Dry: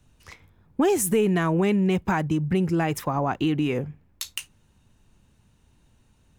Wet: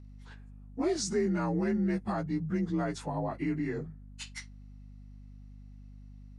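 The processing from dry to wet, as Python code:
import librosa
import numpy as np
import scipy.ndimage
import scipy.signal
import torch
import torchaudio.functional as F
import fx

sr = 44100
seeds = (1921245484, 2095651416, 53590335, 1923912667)

y = fx.partial_stretch(x, sr, pct=87)
y = fx.add_hum(y, sr, base_hz=50, snr_db=15)
y = F.gain(torch.from_numpy(y), -7.0).numpy()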